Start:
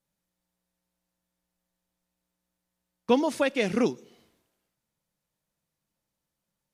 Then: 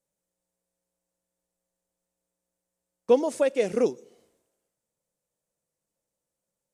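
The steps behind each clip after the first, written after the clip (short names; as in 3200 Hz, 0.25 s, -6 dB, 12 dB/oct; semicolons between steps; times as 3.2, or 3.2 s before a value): graphic EQ 500/4000/8000 Hz +12/-3/+11 dB; gain -7 dB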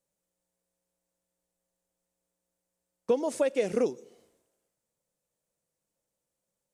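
compressor 5:1, threshold -22 dBFS, peak gain reduction 8 dB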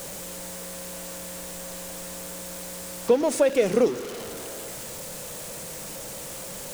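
zero-crossing step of -35.5 dBFS; de-hum 53.41 Hz, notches 7; gain +5.5 dB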